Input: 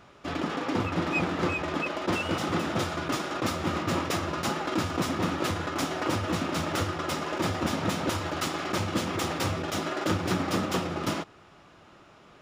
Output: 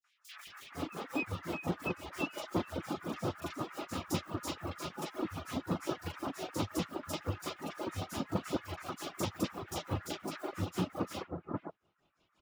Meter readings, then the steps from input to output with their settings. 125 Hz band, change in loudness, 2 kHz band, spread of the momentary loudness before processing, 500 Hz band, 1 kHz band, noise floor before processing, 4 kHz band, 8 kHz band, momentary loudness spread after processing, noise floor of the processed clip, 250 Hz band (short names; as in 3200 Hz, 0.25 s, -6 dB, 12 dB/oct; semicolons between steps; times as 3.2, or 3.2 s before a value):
-8.5 dB, -9.5 dB, -12.0 dB, 3 LU, -9.0 dB, -11.0 dB, -54 dBFS, -10.5 dB, -9.5 dB, 6 LU, -76 dBFS, -8.5 dB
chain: in parallel at -5.5 dB: bit-crush 6-bit; on the sum: harmonic tremolo 5.7 Hz, depth 100%, crossover 2000 Hz; reverb removal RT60 1.9 s; three bands offset in time highs, mids, lows 40/470 ms, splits 1500/5400 Hz; gain -6.5 dB